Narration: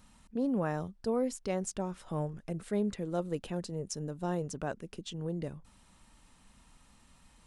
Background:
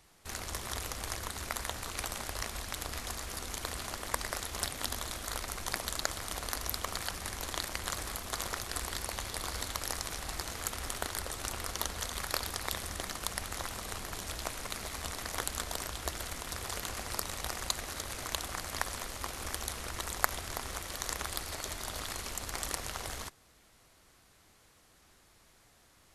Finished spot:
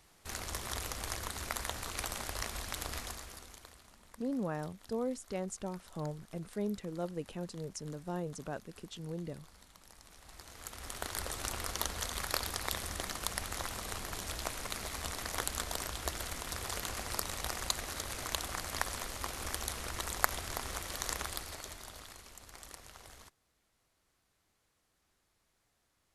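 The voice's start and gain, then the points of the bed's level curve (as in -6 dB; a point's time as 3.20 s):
3.85 s, -4.5 dB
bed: 2.97 s -1 dB
3.95 s -23 dB
9.88 s -23 dB
11.22 s -0.5 dB
21.15 s -0.5 dB
22.26 s -14 dB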